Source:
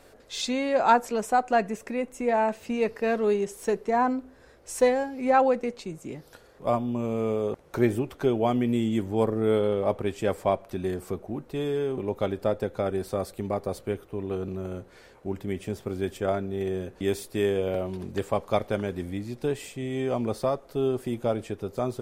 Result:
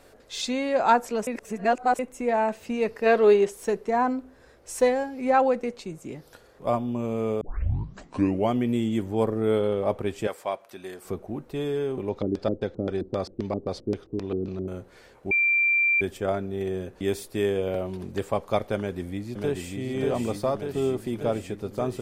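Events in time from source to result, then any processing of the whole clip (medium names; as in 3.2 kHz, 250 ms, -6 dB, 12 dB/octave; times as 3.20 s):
1.27–1.99 s: reverse
3.06–3.50 s: time-frequency box 310–4900 Hz +7 dB
7.41 s: tape start 1.11 s
10.27–11.05 s: high-pass 1 kHz 6 dB/octave
12.09–14.68 s: LFO low-pass square 3.8 Hz 310–4900 Hz
15.31–16.01 s: bleep 2.36 kHz -18.5 dBFS
18.76–19.77 s: echo throw 590 ms, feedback 75%, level -3.5 dB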